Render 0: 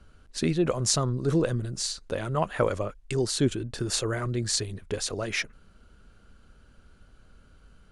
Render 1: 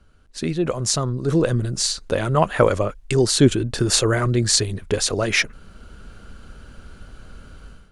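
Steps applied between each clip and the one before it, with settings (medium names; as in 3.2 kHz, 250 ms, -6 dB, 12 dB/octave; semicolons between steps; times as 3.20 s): level rider gain up to 15 dB; trim -1 dB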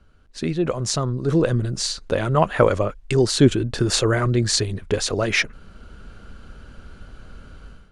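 treble shelf 8.8 kHz -12 dB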